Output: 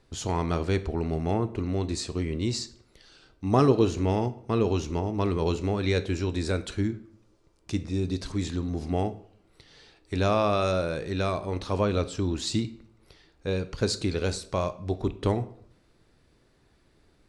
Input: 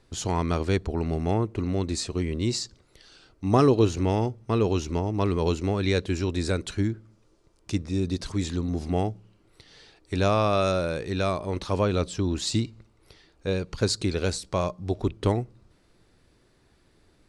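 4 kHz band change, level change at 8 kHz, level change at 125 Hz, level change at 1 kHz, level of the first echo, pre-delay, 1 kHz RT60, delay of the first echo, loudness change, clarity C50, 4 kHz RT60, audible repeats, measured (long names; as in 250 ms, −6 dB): −2.0 dB, −3.0 dB, −1.5 dB, −1.0 dB, no echo audible, 8 ms, 0.60 s, no echo audible, −1.5 dB, 16.0 dB, 0.45 s, no echo audible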